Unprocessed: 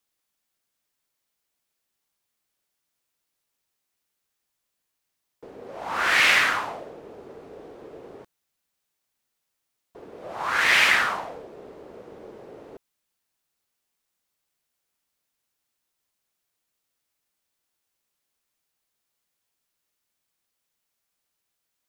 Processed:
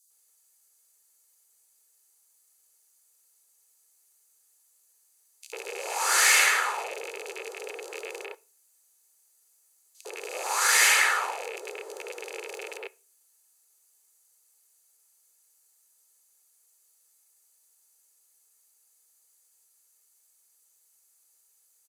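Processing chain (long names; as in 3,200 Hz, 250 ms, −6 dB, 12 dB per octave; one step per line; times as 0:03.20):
loose part that buzzes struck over −49 dBFS, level −26 dBFS
Butterworth high-pass 390 Hz 48 dB per octave
flat-topped bell 7,700 Hz +16 dB
notch filter 5,400 Hz, Q 5.1
comb filter 2.3 ms, depth 40%
in parallel at +2 dB: downward compressor, threshold −34 dBFS, peak gain reduction 20 dB
on the sum: multiband delay without the direct sound highs, lows 100 ms, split 3,800 Hz
on a send at −18 dB: convolution reverb RT60 0.30 s, pre-delay 8 ms
on the sum: level −4.5 dB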